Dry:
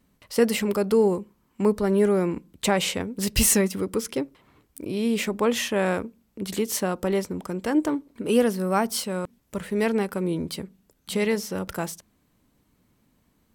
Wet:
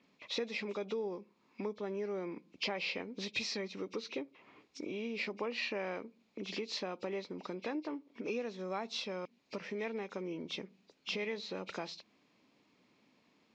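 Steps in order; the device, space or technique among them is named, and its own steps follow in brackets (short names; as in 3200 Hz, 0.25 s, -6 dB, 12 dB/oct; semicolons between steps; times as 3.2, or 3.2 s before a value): hearing aid with frequency lowering (nonlinear frequency compression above 2100 Hz 1.5:1; compressor 4:1, threshold -37 dBFS, peak gain reduction 19 dB; speaker cabinet 270–5000 Hz, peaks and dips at 1500 Hz -4 dB, 2400 Hz +8 dB, 4100 Hz +4 dB)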